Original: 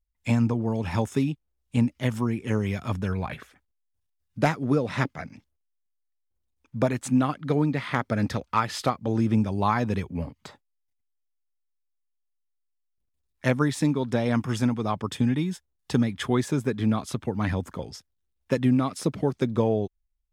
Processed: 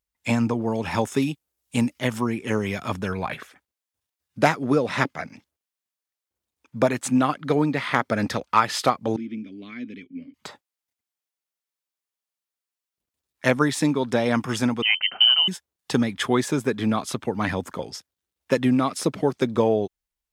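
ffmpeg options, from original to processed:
-filter_complex "[0:a]asettb=1/sr,asplit=3[s0][s1][s2];[s0]atrim=end=1.224[s3];[s1]atrim=start=1.22:end=1.99,asetpts=PTS-STARTPTS,afade=t=in:d=0.004:c=qsin,afade=t=out:st=0.766:d=0.004:c=qsin,aemphasis=mode=production:type=cd[s4];[s2]atrim=start=1.986[s5];[s3][s4]acrossfade=d=0.004:c1=hsin:c2=qsin[s6];[s6][s5]acrossfade=d=0.004:c1=qsin:c2=hsin,asettb=1/sr,asplit=3[s7][s8][s9];[s7]atrim=end=9.164[s10];[s8]atrim=start=9.16:end=10.34,asetpts=PTS-STARTPTS,afade=t=in:d=0.004:c=qsin,afade=t=out:st=1.176:d=0.004:c=qsin,asplit=3[s11][s12][s13];[s11]bandpass=f=270:t=q:w=8,volume=1[s14];[s12]bandpass=f=2290:t=q:w=8,volume=0.501[s15];[s13]bandpass=f=3010:t=q:w=8,volume=0.355[s16];[s14][s15][s16]amix=inputs=3:normalize=0[s17];[s9]atrim=start=10.336[s18];[s10][s17]acrossfade=d=0.004:c1=hsin:c2=qsin[s19];[s19][s18]acrossfade=d=0.004:c1=qsin:c2=hsin,asettb=1/sr,asplit=3[s20][s21][s22];[s20]atrim=end=14.824[s23];[s21]atrim=start=14.82:end=15.48,asetpts=PTS-STARTPTS,afade=t=in:d=0.004:c=qsin,afade=t=out:st=0.656:d=0.004:c=qsin,lowpass=f=2700:t=q:w=0.5098,lowpass=f=2700:t=q:w=0.6013,lowpass=f=2700:t=q:w=0.9,lowpass=f=2700:t=q:w=2.563,afreqshift=-3200[s24];[s22]atrim=start=15.476[s25];[s23][s24]acrossfade=d=0.004:c1=hsin:c2=qsin[s26];[s26][s25]acrossfade=d=0.004:c1=qsin:c2=hsin,highpass=f=330:p=1,volume=2"

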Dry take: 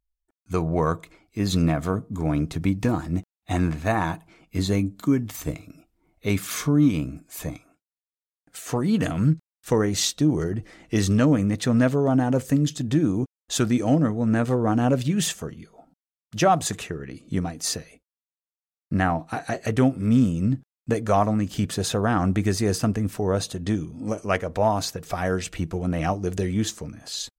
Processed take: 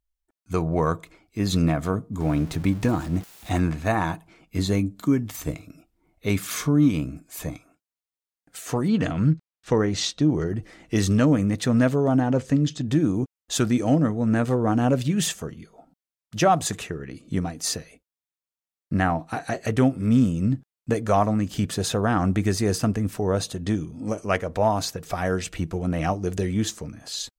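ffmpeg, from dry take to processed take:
-filter_complex "[0:a]asettb=1/sr,asplit=3[s0][s1][s2];[s0]atrim=end=2.204[s3];[s1]atrim=start=2.2:end=3.6,asetpts=PTS-STARTPTS,afade=t=in:d=0.004:c=qsin,afade=t=out:st=1.396:d=0.004:c=qsin,aeval=exprs='val(0)+0.5*0.0141*sgn(val(0))':c=same[s4];[s2]atrim=start=3.596[s5];[s3][s4]acrossfade=d=0.004:c1=hsin:c2=qsin[s6];[s6][s5]acrossfade=d=0.004:c1=qsin:c2=hsin,asettb=1/sr,asplit=3[s7][s8][s9];[s7]atrim=end=8.884[s10];[s8]atrim=start=8.88:end=10.5,asetpts=PTS-STARTPTS,afade=t=in:d=0.004:c=qsin,afade=t=out:st=1.616:d=0.004:c=qsin,lowpass=5300[s11];[s9]atrim=start=10.496[s12];[s10][s11]acrossfade=d=0.004:c1=hsin:c2=qsin[s13];[s13][s12]acrossfade=d=0.004:c1=qsin:c2=hsin,asettb=1/sr,asplit=3[s14][s15][s16];[s14]atrim=end=12.204[s17];[s15]atrim=start=12.2:end=12.88,asetpts=PTS-STARTPTS,afade=t=in:d=0.004:c=qsin,afade=t=out:st=0.676:d=0.004:c=qsin,lowpass=5900[s18];[s16]atrim=start=12.876[s19];[s17][s18]acrossfade=d=0.004:c1=hsin:c2=qsin[s20];[s20][s19]acrossfade=d=0.004:c1=qsin:c2=hsin"

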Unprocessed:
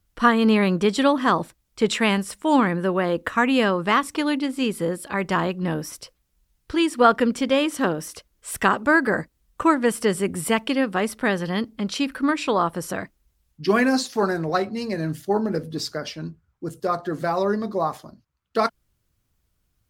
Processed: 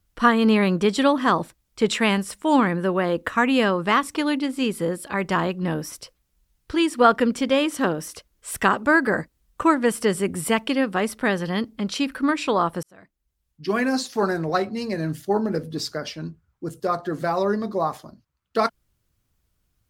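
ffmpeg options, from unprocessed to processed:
-filter_complex "[0:a]asplit=2[s0][s1];[s0]atrim=end=12.83,asetpts=PTS-STARTPTS,afade=t=out:st=12.826:d=0.004:c=hsin[s2];[s1]atrim=start=12.83,asetpts=PTS-STARTPTS,afade=t=in:d=1.47[s3];[s2][s3]concat=n=2:v=0:a=1"

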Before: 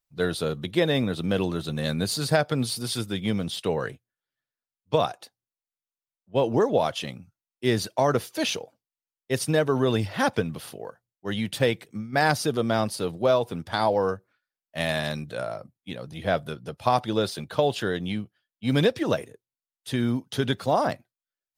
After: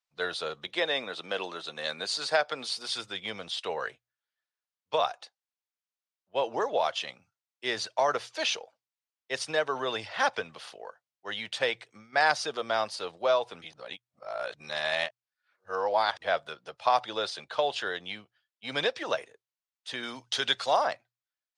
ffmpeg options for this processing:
-filter_complex "[0:a]asettb=1/sr,asplit=3[s0][s1][s2];[s0]atrim=end=0.674[s3];[s1]atrim=start=0.67:end=2.89,asetpts=PTS-STARTPTS,afade=t=in:d=0.004:c=qsin,afade=t=out:st=2.216:d=0.004:c=qsin,highpass=190[s4];[s2]atrim=start=2.886[s5];[s3][s4]acrossfade=d=0.004:c1=hsin:c2=qsin[s6];[s6][s5]acrossfade=d=0.004:c1=qsin:c2=hsin,asettb=1/sr,asplit=3[s7][s8][s9];[s7]atrim=end=20.034[s10];[s8]atrim=start=20.03:end=20.77,asetpts=PTS-STARTPTS,afade=t=in:d=0.004:c=qsin,afade=t=out:st=0.736:d=0.004:c=qsin,highshelf=f=2400:g=10[s11];[s9]atrim=start=20.766[s12];[s10][s11]acrossfade=d=0.004:c1=hsin:c2=qsin[s13];[s13][s12]acrossfade=d=0.004:c1=qsin:c2=hsin,asplit=3[s14][s15][s16];[s14]atrim=end=13.622[s17];[s15]atrim=start=13.618:end=16.222,asetpts=PTS-STARTPTS,areverse[s18];[s16]atrim=start=16.218[s19];[s17][s18]acrossfade=d=0.004:c1=hsin:c2=hsin[s20];[s20][s19]acrossfade=d=0.004:c1=hsin:c2=hsin,lowpass=f=10000:w=0.5412,lowpass=f=10000:w=1.3066,acrossover=split=540 7400:gain=0.0708 1 0.0891[s21][s22][s23];[s21][s22][s23]amix=inputs=3:normalize=0,bandreject=f=60:t=h:w=6,bandreject=f=120:t=h:w=6"

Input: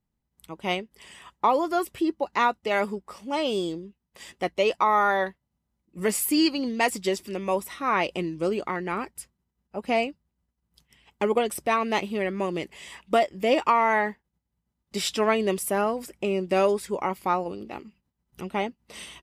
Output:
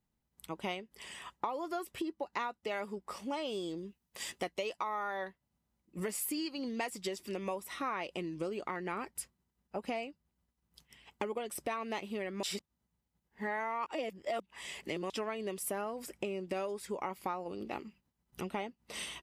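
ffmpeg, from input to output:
-filter_complex "[0:a]asettb=1/sr,asplit=3[s0][s1][s2];[s0]atrim=end=3.774[s3];[s1]atrim=start=3.77:end=4.89,asetpts=PTS-STARTPTS,afade=t=in:d=0.004:c=qsin,afade=t=out:st=1.116:d=0.004:c=qsin,highshelf=f=4100:g=6.5[s4];[s2]atrim=start=4.886[s5];[s3][s4]acrossfade=d=0.004:c1=hsin:c2=qsin[s6];[s6][s5]acrossfade=d=0.004:c1=qsin:c2=hsin,asplit=3[s7][s8][s9];[s7]atrim=end=12.432[s10];[s8]atrim=start=12.428:end=15.102,asetpts=PTS-STARTPTS,areverse[s11];[s9]atrim=start=15.098[s12];[s10][s11]acrossfade=d=0.004:c1=hsin:c2=hsin[s13];[s13][s12]acrossfade=d=0.004:c1=hsin:c2=hsin,acompressor=threshold=0.0224:ratio=12,lowshelf=f=210:g=-4.5"

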